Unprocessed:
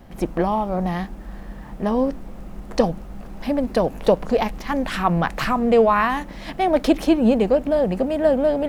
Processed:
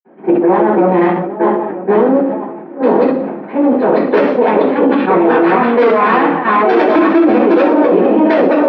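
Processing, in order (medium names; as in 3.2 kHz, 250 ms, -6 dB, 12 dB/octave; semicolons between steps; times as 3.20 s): backward echo that repeats 479 ms, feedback 50%, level -3 dB; distance through air 370 m; gate -22 dBFS, range -8 dB; time-frequency box 4.71–5.01 s, 610–2300 Hz -9 dB; level held to a coarse grid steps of 15 dB; valve stage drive 24 dB, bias 0.75; high-pass 290 Hz 24 dB/octave; peaking EQ 7.5 kHz -14 dB 0.35 oct; reverberation, pre-delay 47 ms; level-controlled noise filter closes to 2 kHz, open at -31.5 dBFS; loudness maximiser +33.5 dB; decay stretcher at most 45 dB/s; trim -1.5 dB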